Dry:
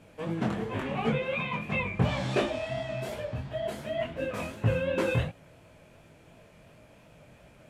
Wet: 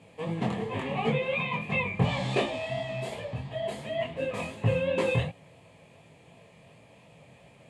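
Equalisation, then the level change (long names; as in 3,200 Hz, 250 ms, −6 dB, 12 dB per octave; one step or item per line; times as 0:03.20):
loudspeaker in its box 110–9,900 Hz, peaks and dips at 230 Hz −4 dB, 330 Hz −7 dB, 1,400 Hz −9 dB, 5,700 Hz −8 dB
notch filter 610 Hz, Q 12
notch filter 1,500 Hz, Q 8.5
+3.0 dB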